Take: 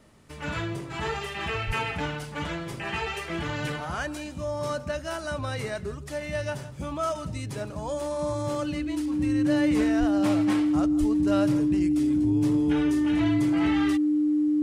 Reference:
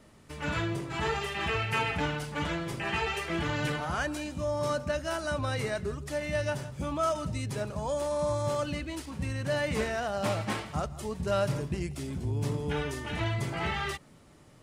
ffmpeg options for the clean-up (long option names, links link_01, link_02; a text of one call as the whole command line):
ffmpeg -i in.wav -filter_complex "[0:a]bandreject=frequency=300:width=30,asplit=3[link_01][link_02][link_03];[link_01]afade=type=out:start_time=1.66:duration=0.02[link_04];[link_02]highpass=frequency=140:width=0.5412,highpass=frequency=140:width=1.3066,afade=type=in:start_time=1.66:duration=0.02,afade=type=out:start_time=1.78:duration=0.02[link_05];[link_03]afade=type=in:start_time=1.78:duration=0.02[link_06];[link_04][link_05][link_06]amix=inputs=3:normalize=0,asplit=3[link_07][link_08][link_09];[link_07]afade=type=out:start_time=9.99:duration=0.02[link_10];[link_08]highpass=frequency=140:width=0.5412,highpass=frequency=140:width=1.3066,afade=type=in:start_time=9.99:duration=0.02,afade=type=out:start_time=10.11:duration=0.02[link_11];[link_09]afade=type=in:start_time=10.11:duration=0.02[link_12];[link_10][link_11][link_12]amix=inputs=3:normalize=0,asplit=3[link_13][link_14][link_15];[link_13]afade=type=out:start_time=10.99:duration=0.02[link_16];[link_14]highpass=frequency=140:width=0.5412,highpass=frequency=140:width=1.3066,afade=type=in:start_time=10.99:duration=0.02,afade=type=out:start_time=11.11:duration=0.02[link_17];[link_15]afade=type=in:start_time=11.11:duration=0.02[link_18];[link_16][link_17][link_18]amix=inputs=3:normalize=0" out.wav